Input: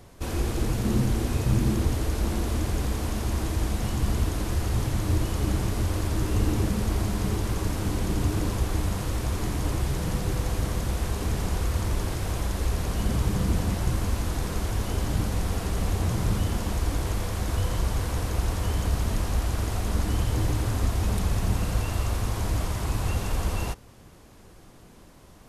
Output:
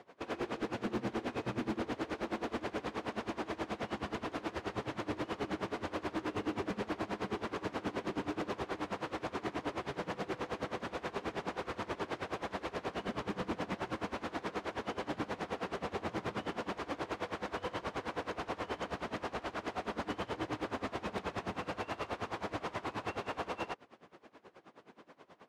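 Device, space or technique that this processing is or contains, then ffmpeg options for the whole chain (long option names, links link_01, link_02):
helicopter radio: -af "highpass=330,lowpass=2700,aeval=exprs='val(0)*pow(10,-21*(0.5-0.5*cos(2*PI*9.4*n/s))/20)':channel_layout=same,asoftclip=type=hard:threshold=-33dB,volume=3.5dB"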